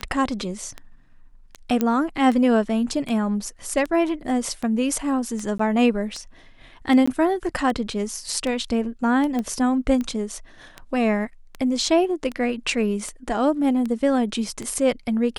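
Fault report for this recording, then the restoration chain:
scratch tick 78 rpm −17 dBFS
0:01.81: click −9 dBFS
0:05.58–0:05.59: drop-out 14 ms
0:07.06–0:07.08: drop-out 15 ms
0:09.39: click −15 dBFS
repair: click removal
repair the gap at 0:05.58, 14 ms
repair the gap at 0:07.06, 15 ms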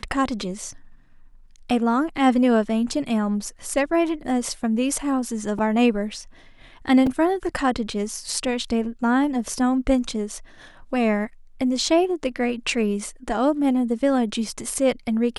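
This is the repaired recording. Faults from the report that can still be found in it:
0:01.81: click
0:09.39: click

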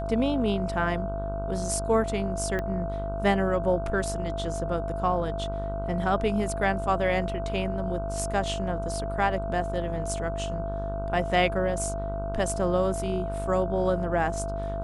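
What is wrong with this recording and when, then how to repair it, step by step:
mains buzz 50 Hz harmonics 31 −33 dBFS
whistle 670 Hz −32 dBFS
0:02.59: click −18 dBFS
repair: click removal
hum removal 50 Hz, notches 31
notch filter 670 Hz, Q 30

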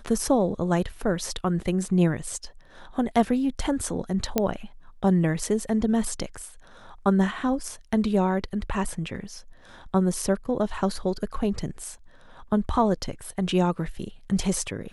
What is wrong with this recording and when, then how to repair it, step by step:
0:04.38: click −7 dBFS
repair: click removal

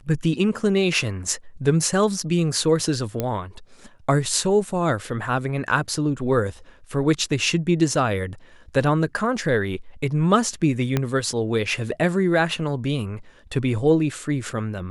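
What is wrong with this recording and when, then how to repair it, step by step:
0:03.20: click −10 dBFS
0:10.97: click −8 dBFS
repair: click removal

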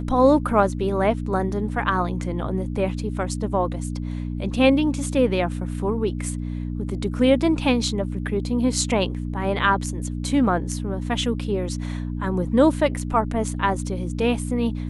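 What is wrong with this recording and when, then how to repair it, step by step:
mains hum 60 Hz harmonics 5 −28 dBFS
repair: hum removal 60 Hz, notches 5

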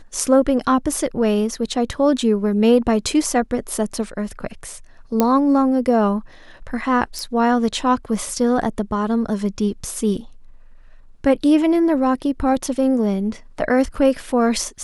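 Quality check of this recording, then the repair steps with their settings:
0:05.20: click −3 dBFS
0:07.19: click −14 dBFS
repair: click removal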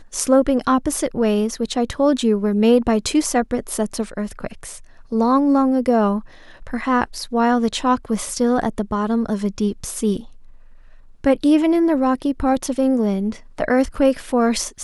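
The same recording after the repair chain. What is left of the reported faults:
0:07.19: click

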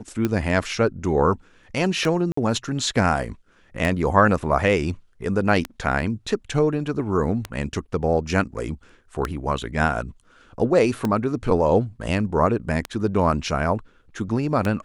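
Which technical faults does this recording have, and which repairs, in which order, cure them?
scratch tick 33 1/3 rpm −10 dBFS
0:02.32–0:02.37: drop-out 54 ms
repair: click removal
repair the gap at 0:02.32, 54 ms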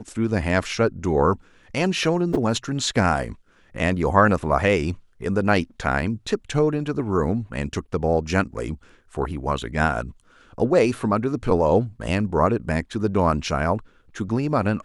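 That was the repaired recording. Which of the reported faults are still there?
none of them is left

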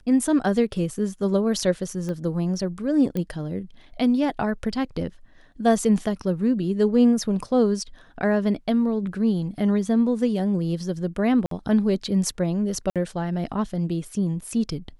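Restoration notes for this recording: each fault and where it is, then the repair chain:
0:02.09: click −20 dBFS
0:03.17: click −16 dBFS
0:11.46–0:11.51: drop-out 53 ms
0:12.90–0:12.96: drop-out 57 ms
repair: click removal
repair the gap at 0:11.46, 53 ms
repair the gap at 0:12.90, 57 ms

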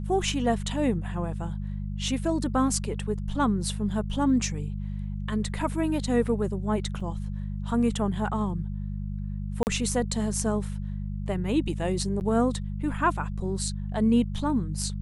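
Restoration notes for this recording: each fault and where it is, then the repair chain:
mains hum 50 Hz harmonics 4 −32 dBFS
0:07.00: drop-out 4.4 ms
0:09.63–0:09.67: drop-out 39 ms
0:12.20–0:12.21: drop-out 9.3 ms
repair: hum removal 50 Hz, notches 4
repair the gap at 0:07.00, 4.4 ms
repair the gap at 0:09.63, 39 ms
repair the gap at 0:12.20, 9.3 ms

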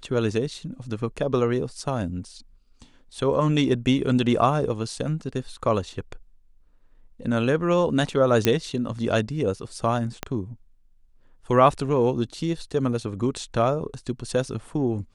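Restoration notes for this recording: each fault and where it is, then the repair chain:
0:08.45: click −4 dBFS
0:10.23: click −12 dBFS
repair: click removal

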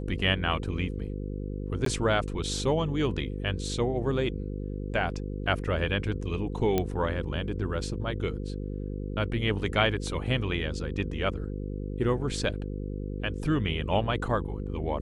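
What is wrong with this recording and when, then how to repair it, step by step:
mains buzz 50 Hz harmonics 10 −34 dBFS
0:01.85–0:01.86: drop-out 13 ms
0:06.78: click −12 dBFS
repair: click removal
hum removal 50 Hz, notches 10
repair the gap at 0:01.85, 13 ms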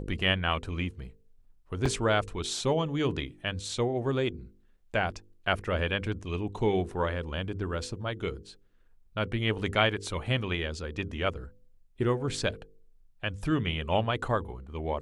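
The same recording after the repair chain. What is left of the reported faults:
none of them is left

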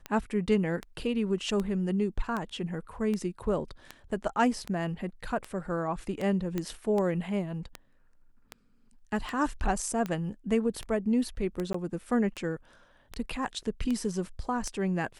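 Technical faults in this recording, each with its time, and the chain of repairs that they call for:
scratch tick 78 rpm −20 dBFS
0:06.58: click −18 dBFS
0:11.73–0:11.74: drop-out 14 ms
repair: click removal
repair the gap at 0:11.73, 14 ms

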